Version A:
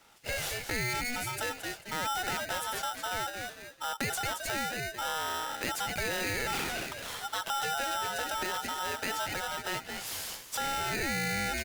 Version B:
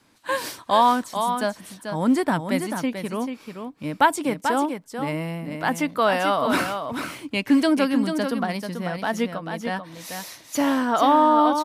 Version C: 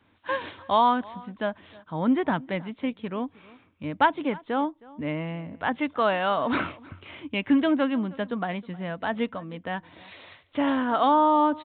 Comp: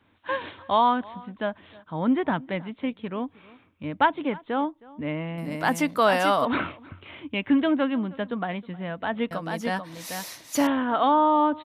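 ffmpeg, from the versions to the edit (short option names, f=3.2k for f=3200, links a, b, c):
-filter_complex "[1:a]asplit=2[a][b];[2:a]asplit=3[c][d][e];[c]atrim=end=5.382[f];[a]atrim=start=5.378:end=6.452[g];[d]atrim=start=6.448:end=9.312[h];[b]atrim=start=9.308:end=10.672[i];[e]atrim=start=10.668[j];[f][g]acrossfade=d=0.004:c1=hsin:c2=hsin[k];[k][h]acrossfade=d=0.004:c1=hsin:c2=hsin[l];[l][i]acrossfade=d=0.004:c1=hsin:c2=hsin[m];[m][j]acrossfade=d=0.004:c1=hsin:c2=hsin"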